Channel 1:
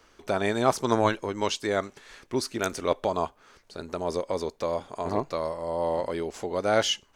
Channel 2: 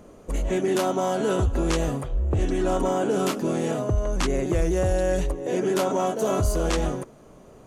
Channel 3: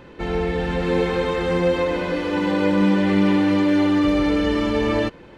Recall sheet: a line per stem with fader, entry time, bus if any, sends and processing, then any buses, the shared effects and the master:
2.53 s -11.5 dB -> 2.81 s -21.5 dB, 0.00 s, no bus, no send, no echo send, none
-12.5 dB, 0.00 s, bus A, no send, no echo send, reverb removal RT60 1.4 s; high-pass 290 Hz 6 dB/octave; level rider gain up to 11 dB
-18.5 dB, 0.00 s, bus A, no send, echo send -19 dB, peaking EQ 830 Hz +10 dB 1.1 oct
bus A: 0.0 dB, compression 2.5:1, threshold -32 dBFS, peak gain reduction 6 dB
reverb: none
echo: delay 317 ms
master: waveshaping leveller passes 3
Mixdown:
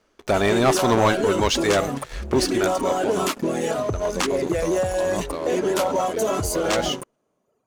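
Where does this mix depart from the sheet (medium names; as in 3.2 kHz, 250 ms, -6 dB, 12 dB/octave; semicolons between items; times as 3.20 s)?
stem 1 -11.5 dB -> -3.0 dB; stem 3: muted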